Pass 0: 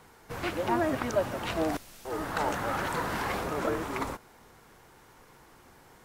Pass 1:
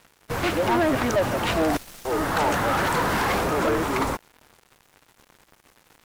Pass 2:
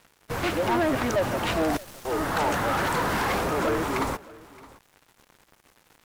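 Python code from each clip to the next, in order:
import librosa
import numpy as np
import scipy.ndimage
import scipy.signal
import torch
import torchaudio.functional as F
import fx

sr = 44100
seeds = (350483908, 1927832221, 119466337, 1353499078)

y1 = fx.leveller(x, sr, passes=3)
y1 = np.sign(y1) * np.maximum(np.abs(y1) - 10.0 ** (-47.5 / 20.0), 0.0)
y2 = y1 + 10.0 ** (-21.5 / 20.0) * np.pad(y1, (int(620 * sr / 1000.0), 0))[:len(y1)]
y2 = F.gain(torch.from_numpy(y2), -2.5).numpy()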